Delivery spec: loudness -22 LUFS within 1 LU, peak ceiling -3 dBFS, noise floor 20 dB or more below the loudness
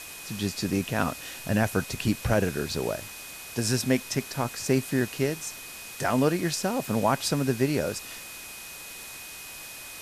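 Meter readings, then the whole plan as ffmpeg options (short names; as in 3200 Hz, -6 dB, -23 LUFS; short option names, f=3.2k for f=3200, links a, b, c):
steady tone 2500 Hz; tone level -45 dBFS; noise floor -42 dBFS; noise floor target -48 dBFS; loudness -28.0 LUFS; peak -11.0 dBFS; loudness target -22.0 LUFS
-> -af "bandreject=f=2.5k:w=30"
-af "afftdn=nr=6:nf=-42"
-af "volume=6dB"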